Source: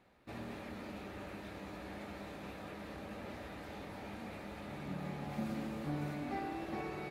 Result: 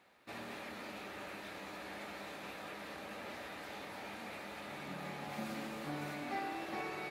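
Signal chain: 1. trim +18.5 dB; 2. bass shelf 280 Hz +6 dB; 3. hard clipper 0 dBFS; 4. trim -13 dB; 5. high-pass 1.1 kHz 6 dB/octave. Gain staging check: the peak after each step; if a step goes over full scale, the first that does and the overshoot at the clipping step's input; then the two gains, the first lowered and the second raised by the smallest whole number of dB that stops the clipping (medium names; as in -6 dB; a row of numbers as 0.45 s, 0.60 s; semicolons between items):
-9.0 dBFS, -5.5 dBFS, -5.5 dBFS, -18.5 dBFS, -26.5 dBFS; nothing clips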